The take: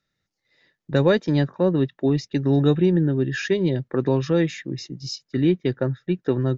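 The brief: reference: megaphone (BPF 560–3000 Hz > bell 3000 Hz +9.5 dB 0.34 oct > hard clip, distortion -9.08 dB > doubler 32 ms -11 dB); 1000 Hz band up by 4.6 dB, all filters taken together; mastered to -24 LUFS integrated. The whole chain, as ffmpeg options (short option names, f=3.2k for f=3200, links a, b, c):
-filter_complex "[0:a]highpass=560,lowpass=3k,equalizer=f=1k:t=o:g=6.5,equalizer=f=3k:t=o:w=0.34:g=9.5,asoftclip=type=hard:threshold=-22.5dB,asplit=2[a][b];[b]adelay=32,volume=-11dB[c];[a][c]amix=inputs=2:normalize=0,volume=6.5dB"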